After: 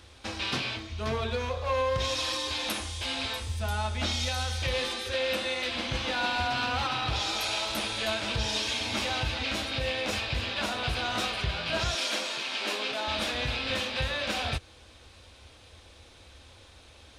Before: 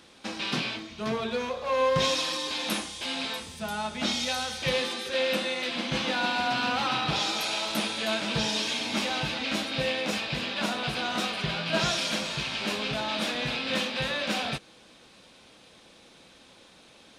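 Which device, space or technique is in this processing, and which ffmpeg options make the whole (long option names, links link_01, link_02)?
car stereo with a boomy subwoofer: -filter_complex "[0:a]lowshelf=frequency=120:width_type=q:width=3:gain=12.5,alimiter=limit=-19dB:level=0:latency=1:release=168,asettb=1/sr,asplit=3[link_01][link_02][link_03];[link_01]atrim=end=11.954[link_04];[link_02]atrim=start=11.95:end=13.08,asetpts=PTS-STARTPTS,afade=type=in:duration=0.004:curve=qsin,afade=type=out:start_time=1.126:duration=0.004:curve=qsin,highpass=frequency=240:width=0.5412,highpass=frequency=240:width=1.3066[link_05];[link_03]atrim=start=13.076[link_06];[link_04][link_05]acrossfade=duration=0.004:curve1=hsin:curve2=qsin[link_07];[link_07][link_06]acrossfade=duration=0.004:curve1=qsin:curve2=hsin"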